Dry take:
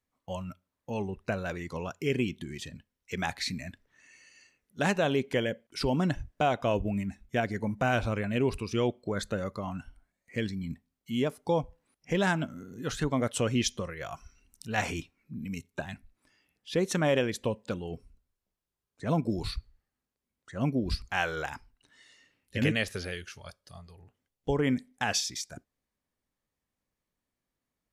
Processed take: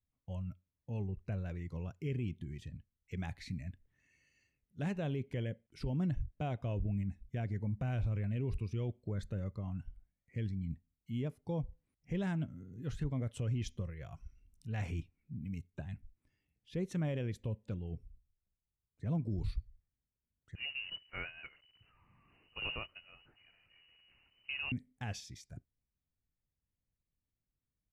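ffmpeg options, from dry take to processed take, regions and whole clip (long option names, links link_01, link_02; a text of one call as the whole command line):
ffmpeg -i in.wav -filter_complex "[0:a]asettb=1/sr,asplit=3[link_01][link_02][link_03];[link_01]atrim=end=20.554[link_04];[link_02]atrim=start=20.55:end=24.72,asetpts=PTS-STARTPTS,afade=type=in:duration=0.004:curve=qsin,afade=type=out:start_time=4.166:duration=0.004:curve=qsin,aeval=exprs='val(0)+0.5*0.0224*sgn(val(0))':channel_layout=same,agate=range=-14dB:threshold=-31dB:ratio=16:release=100:detection=peak,lowpass=frequency=2600:width_type=q:width=0.5098,lowpass=frequency=2600:width_type=q:width=0.6013,lowpass=frequency=2600:width_type=q:width=0.9,lowpass=frequency=2600:width_type=q:width=2.563,afreqshift=-3000[link_05];[link_03]atrim=start=24.716[link_06];[link_04][link_05]acrossfade=duration=0.004:curve1=hsin:curve2=qsin[link_07];[link_07][link_06]acrossfade=duration=0.004:curve1=qsin:curve2=hsin,firequalizer=gain_entry='entry(110,0);entry(220,-11);entry(600,-17);entry(930,-20);entry(1400,-21);entry(2100,-16);entry(4300,-22)':delay=0.05:min_phase=1,alimiter=level_in=6.5dB:limit=-24dB:level=0:latency=1:release=12,volume=-6.5dB,volume=2.5dB" out.wav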